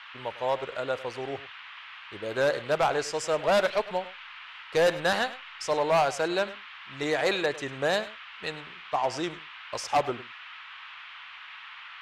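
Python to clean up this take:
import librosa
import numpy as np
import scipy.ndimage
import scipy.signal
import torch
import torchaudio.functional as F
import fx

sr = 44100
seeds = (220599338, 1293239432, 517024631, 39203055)

y = fx.notch(x, sr, hz=1300.0, q=30.0)
y = fx.noise_reduce(y, sr, print_start_s=1.61, print_end_s=2.11, reduce_db=27.0)
y = fx.fix_echo_inverse(y, sr, delay_ms=102, level_db=-16.5)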